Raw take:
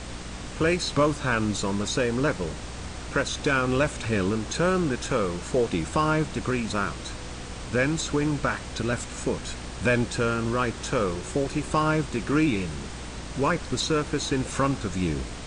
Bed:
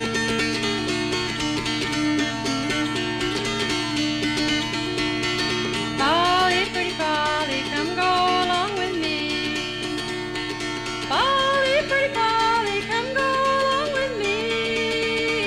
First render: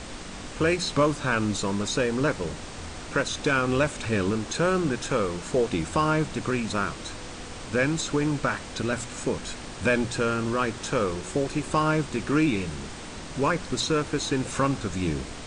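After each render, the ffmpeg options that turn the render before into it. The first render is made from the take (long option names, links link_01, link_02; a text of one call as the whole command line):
ffmpeg -i in.wav -af "bandreject=frequency=60:width_type=h:width=6,bandreject=frequency=120:width_type=h:width=6,bandreject=frequency=180:width_type=h:width=6" out.wav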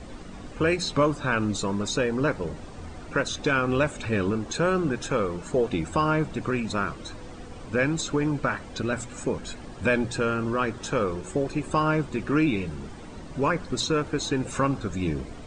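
ffmpeg -i in.wav -af "afftdn=noise_reduction=12:noise_floor=-39" out.wav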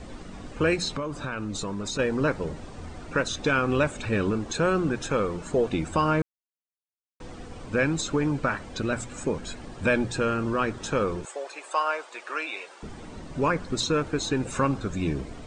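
ffmpeg -i in.wav -filter_complex "[0:a]asettb=1/sr,asplit=3[link_01][link_02][link_03];[link_01]atrim=end=0.884[link_04];[link_02]atrim=start=0.88:end=1.99,asetpts=PTS-STARTPTS,afade=type=in:duration=0.004:curve=qsin,afade=type=out:start_time=1.106:duration=0.004:curve=qsin,acompressor=threshold=-28dB:ratio=5:attack=3.2:release=140:knee=1:detection=peak[link_05];[link_03]atrim=start=1.986[link_06];[link_04][link_05]acrossfade=duration=0.004:curve1=hsin:curve2=qsin[link_07];[link_07][link_06]acrossfade=duration=0.004:curve1=qsin:curve2=hsin,asettb=1/sr,asplit=3[link_08][link_09][link_10];[link_08]atrim=end=11.254[link_11];[link_09]atrim=start=11.25:end=12.83,asetpts=PTS-STARTPTS,afade=type=in:duration=0.004:curve=qsin,afade=type=out:start_time=1.576:duration=0.004:curve=qsin,highpass=frequency=580:width=0.5412,highpass=frequency=580:width=1.3066[link_12];[link_10]atrim=start=12.826[link_13];[link_11][link_12]acrossfade=duration=0.004:curve1=hsin:curve2=qsin[link_14];[link_14][link_13]acrossfade=duration=0.004:curve1=qsin:curve2=hsin,asplit=3[link_15][link_16][link_17];[link_15]atrim=end=6.22,asetpts=PTS-STARTPTS,afade=type=out:start_time=6.216:duration=0.004:curve=hsin[link_18];[link_16]atrim=start=6.22:end=7.2,asetpts=PTS-STARTPTS,volume=0[link_19];[link_17]atrim=start=7.2,asetpts=PTS-STARTPTS,afade=type=in:duration=0.004:curve=hsin[link_20];[link_18][link_19][link_20]concat=n=3:v=0:a=1" out.wav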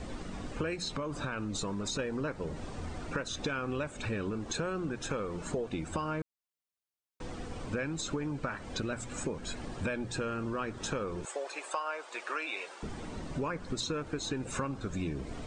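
ffmpeg -i in.wav -af "acompressor=threshold=-32dB:ratio=6" out.wav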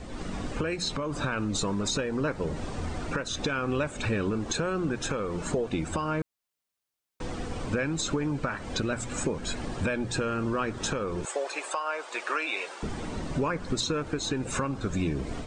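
ffmpeg -i in.wav -af "dynaudnorm=framelen=110:gausssize=3:maxgain=6.5dB,alimiter=limit=-17.5dB:level=0:latency=1:release=276" out.wav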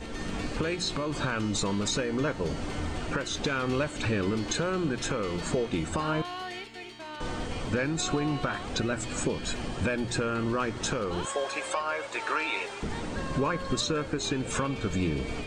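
ffmpeg -i in.wav -i bed.wav -filter_complex "[1:a]volume=-18.5dB[link_01];[0:a][link_01]amix=inputs=2:normalize=0" out.wav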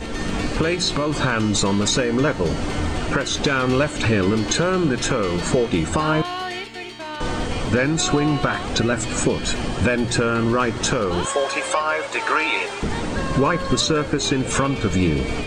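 ffmpeg -i in.wav -af "volume=9.5dB" out.wav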